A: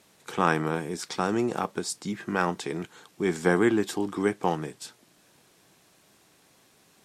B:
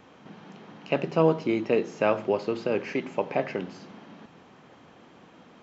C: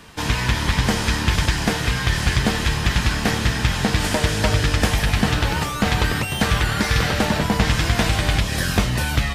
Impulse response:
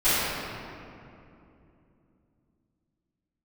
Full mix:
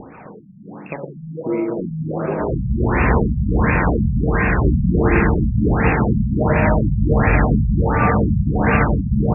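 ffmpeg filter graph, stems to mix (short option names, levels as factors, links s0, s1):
-filter_complex "[0:a]lowshelf=f=210:g=9,bandreject=f=50:t=h:w=6,bandreject=f=100:t=h:w=6,bandreject=f=150:t=h:w=6,bandreject=f=200:t=h:w=6,bandreject=f=250:t=h:w=6,bandreject=f=300:t=h:w=6,bandreject=f=350:t=h:w=6,adelay=1400,volume=0.794,asplit=2[s0][s1];[s1]volume=0.106[s2];[1:a]aphaser=in_gain=1:out_gain=1:delay=2.3:decay=0.6:speed=1.3:type=sinusoidal,volume=1.12,asplit=2[s3][s4];[s4]volume=0.0668[s5];[2:a]lowshelf=f=70:g=-11,adelay=2200,volume=1.33,asplit=2[s6][s7];[s7]volume=0.188[s8];[s3][s6]amix=inputs=2:normalize=0,acompressor=threshold=0.0631:ratio=6,volume=1[s9];[3:a]atrim=start_sample=2205[s10];[s2][s5][s8]amix=inputs=3:normalize=0[s11];[s11][s10]afir=irnorm=-1:irlink=0[s12];[s0][s9][s12]amix=inputs=3:normalize=0,acompressor=mode=upward:threshold=0.0398:ratio=2.5,afftfilt=real='re*lt(b*sr/1024,210*pow(2800/210,0.5+0.5*sin(2*PI*1.4*pts/sr)))':imag='im*lt(b*sr/1024,210*pow(2800/210,0.5+0.5*sin(2*PI*1.4*pts/sr)))':win_size=1024:overlap=0.75"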